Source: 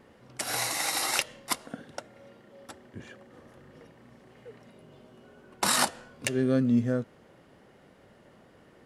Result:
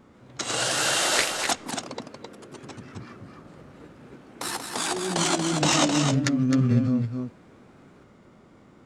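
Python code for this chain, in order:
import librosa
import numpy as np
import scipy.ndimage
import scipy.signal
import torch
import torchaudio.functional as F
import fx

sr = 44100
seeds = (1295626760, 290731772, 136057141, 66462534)

y = x + 10.0 ** (-5.5 / 20.0) * np.pad(x, (int(262 * sr / 1000.0), 0))[:len(x)]
y = fx.formant_shift(y, sr, semitones=-6)
y = fx.echo_pitch(y, sr, ms=144, semitones=2, count=3, db_per_echo=-3.0)
y = F.gain(torch.from_numpy(y), 2.5).numpy()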